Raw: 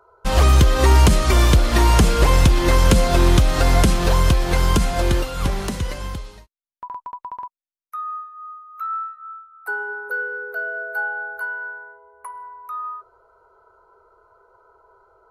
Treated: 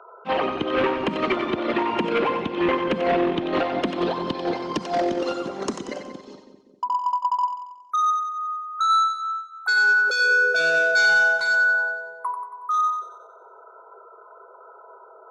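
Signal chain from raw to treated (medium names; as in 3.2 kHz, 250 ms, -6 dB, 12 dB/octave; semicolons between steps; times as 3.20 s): resonances exaggerated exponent 2; high-pass 290 Hz 24 dB/octave; hard clipper -26 dBFS, distortion -10 dB; low-pass sweep 2.8 kHz -> 6.4 kHz, 3.43–5.34 s; two-band feedback delay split 480 Hz, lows 195 ms, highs 92 ms, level -7.5 dB; trim +7.5 dB; Opus 64 kbps 48 kHz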